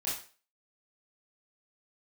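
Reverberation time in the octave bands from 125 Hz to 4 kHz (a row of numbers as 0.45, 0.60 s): 0.30, 0.35, 0.40, 0.40, 0.40, 0.35 s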